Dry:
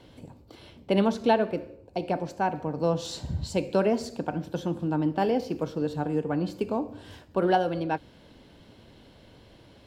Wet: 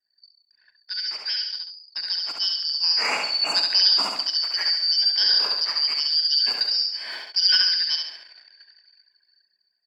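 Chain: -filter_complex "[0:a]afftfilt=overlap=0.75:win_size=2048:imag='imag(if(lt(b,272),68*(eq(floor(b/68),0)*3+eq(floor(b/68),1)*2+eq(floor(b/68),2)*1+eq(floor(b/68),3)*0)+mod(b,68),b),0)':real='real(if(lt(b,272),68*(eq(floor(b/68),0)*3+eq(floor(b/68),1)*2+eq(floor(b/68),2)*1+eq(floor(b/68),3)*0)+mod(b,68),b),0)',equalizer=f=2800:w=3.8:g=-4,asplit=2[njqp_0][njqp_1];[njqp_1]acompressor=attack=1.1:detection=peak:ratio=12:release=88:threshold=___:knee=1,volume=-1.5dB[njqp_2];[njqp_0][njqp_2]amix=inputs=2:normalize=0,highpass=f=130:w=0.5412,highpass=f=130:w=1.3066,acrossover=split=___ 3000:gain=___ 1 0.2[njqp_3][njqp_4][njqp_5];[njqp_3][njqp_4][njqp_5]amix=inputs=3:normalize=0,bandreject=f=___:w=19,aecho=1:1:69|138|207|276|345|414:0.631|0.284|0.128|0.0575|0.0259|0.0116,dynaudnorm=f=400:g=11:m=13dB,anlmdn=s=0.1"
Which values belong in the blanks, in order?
-33dB, 350, 0.0794, 6200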